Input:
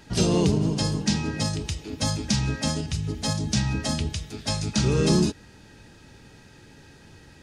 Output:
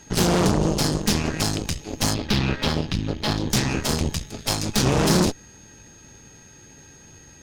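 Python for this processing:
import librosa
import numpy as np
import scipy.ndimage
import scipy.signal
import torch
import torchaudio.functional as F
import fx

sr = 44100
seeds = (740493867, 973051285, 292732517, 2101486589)

y = x + 10.0 ** (-49.0 / 20.0) * np.sin(2.0 * np.pi * 6500.0 * np.arange(len(x)) / sr)
y = fx.cheby_harmonics(y, sr, harmonics=(8,), levels_db=(-11,), full_scale_db=-9.0)
y = fx.high_shelf_res(y, sr, hz=5400.0, db=-12.0, q=1.5, at=(2.14, 3.5))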